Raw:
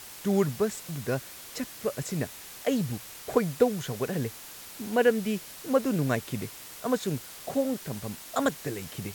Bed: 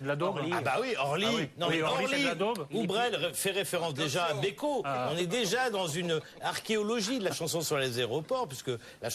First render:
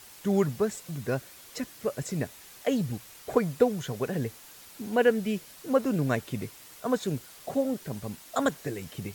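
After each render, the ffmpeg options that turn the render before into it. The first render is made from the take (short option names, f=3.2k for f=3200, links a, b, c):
-af "afftdn=nr=6:nf=-45"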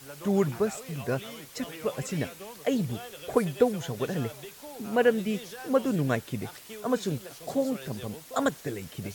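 -filter_complex "[1:a]volume=-13.5dB[a];[0:a][a]amix=inputs=2:normalize=0"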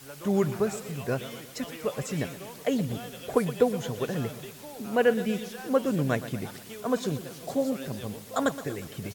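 -af "aecho=1:1:120|240|360|480|600|720:0.2|0.114|0.0648|0.037|0.0211|0.012"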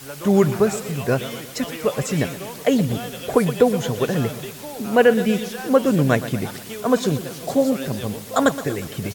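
-af "volume=9dB,alimiter=limit=-3dB:level=0:latency=1"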